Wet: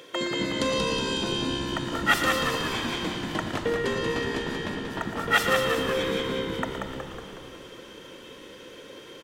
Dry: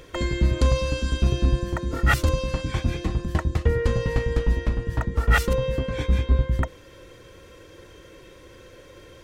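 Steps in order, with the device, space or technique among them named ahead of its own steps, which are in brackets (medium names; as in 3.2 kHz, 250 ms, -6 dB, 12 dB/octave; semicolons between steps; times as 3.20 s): PA in a hall (high-pass 130 Hz; peaking EQ 3.3 kHz +6 dB 0.37 oct; delay 117 ms -10 dB; reverberation RT60 3.3 s, pre-delay 33 ms, DRR 7.5 dB); high-pass 230 Hz 12 dB/octave; frequency-shifting echo 184 ms, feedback 57%, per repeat -66 Hz, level -4.5 dB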